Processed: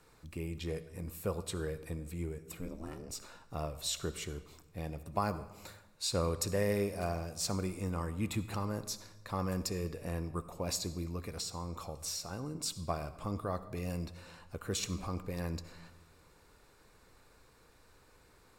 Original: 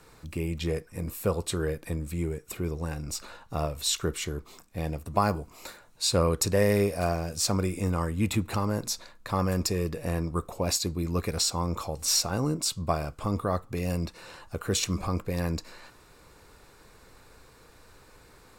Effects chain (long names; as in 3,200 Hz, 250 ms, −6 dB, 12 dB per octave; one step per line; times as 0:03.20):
0:02.59–0:03.08: ring modulation 77 Hz → 360 Hz
0:11.03–0:12.55: downward compressor, threshold −28 dBFS, peak gain reduction 7.5 dB
convolution reverb RT60 1.1 s, pre-delay 57 ms, DRR 14 dB
level −8.5 dB